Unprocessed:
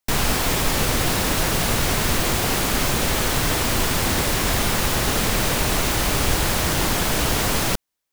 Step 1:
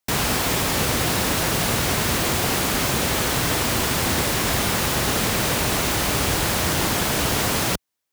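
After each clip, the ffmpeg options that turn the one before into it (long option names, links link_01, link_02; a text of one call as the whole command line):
ffmpeg -i in.wav -af "highpass=65" out.wav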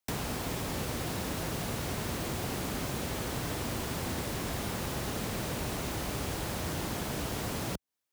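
ffmpeg -i in.wav -filter_complex "[0:a]acrossover=split=320|910[link_01][link_02][link_03];[link_01]acompressor=threshold=-29dB:ratio=4[link_04];[link_02]acompressor=threshold=-35dB:ratio=4[link_05];[link_03]acompressor=threshold=-34dB:ratio=4[link_06];[link_04][link_05][link_06]amix=inputs=3:normalize=0,volume=-6dB" out.wav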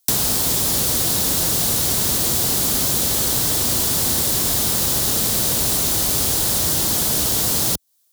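ffmpeg -i in.wav -af "aexciter=amount=5.1:drive=2.9:freq=3400,volume=8dB" out.wav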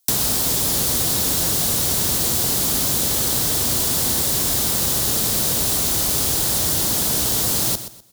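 ffmpeg -i in.wav -af "aecho=1:1:125|250|375:0.251|0.0678|0.0183,volume=-1dB" out.wav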